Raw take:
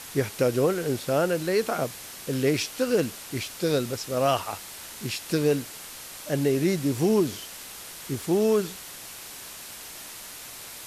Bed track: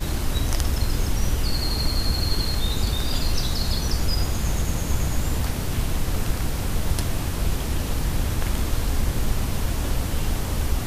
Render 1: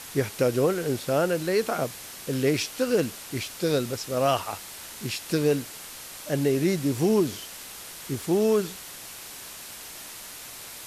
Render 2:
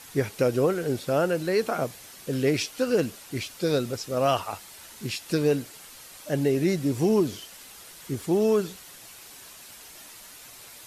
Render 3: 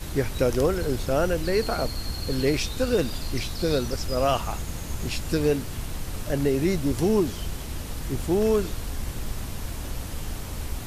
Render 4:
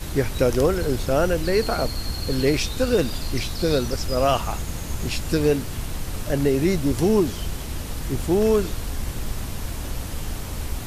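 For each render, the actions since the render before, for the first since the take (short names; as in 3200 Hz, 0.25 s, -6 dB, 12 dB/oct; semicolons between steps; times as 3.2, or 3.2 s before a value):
nothing audible
denoiser 7 dB, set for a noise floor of -42 dBFS
add bed track -8.5 dB
gain +3 dB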